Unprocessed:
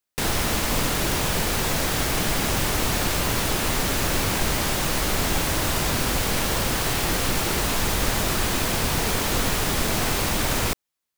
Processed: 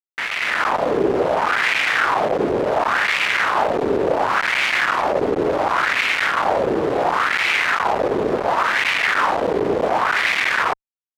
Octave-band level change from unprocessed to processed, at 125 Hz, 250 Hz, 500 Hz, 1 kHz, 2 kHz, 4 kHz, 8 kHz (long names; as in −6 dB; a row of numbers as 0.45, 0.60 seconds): −9.5, +1.5, +9.5, +9.5, +9.5, −0.5, −13.0 decibels